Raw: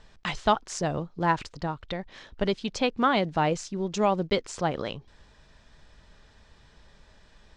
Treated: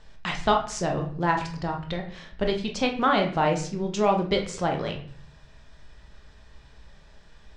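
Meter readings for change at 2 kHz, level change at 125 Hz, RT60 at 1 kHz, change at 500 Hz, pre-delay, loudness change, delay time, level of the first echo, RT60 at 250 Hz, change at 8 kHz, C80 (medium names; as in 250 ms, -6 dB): +2.0 dB, +2.5 dB, 0.50 s, +2.0 dB, 5 ms, +2.0 dB, no echo, no echo, 0.75 s, +1.0 dB, 13.5 dB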